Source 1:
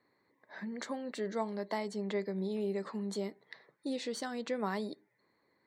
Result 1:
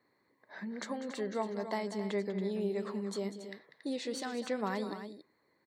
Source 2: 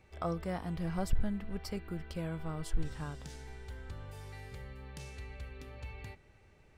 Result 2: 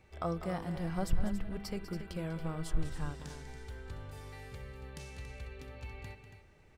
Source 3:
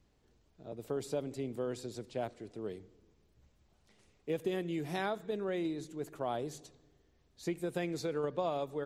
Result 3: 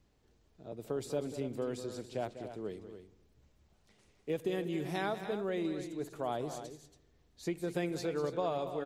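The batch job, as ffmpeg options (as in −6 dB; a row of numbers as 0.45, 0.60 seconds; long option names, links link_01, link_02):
-af "aecho=1:1:195.3|279.9:0.251|0.282"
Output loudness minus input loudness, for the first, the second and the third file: +0.5, +0.5, +0.5 LU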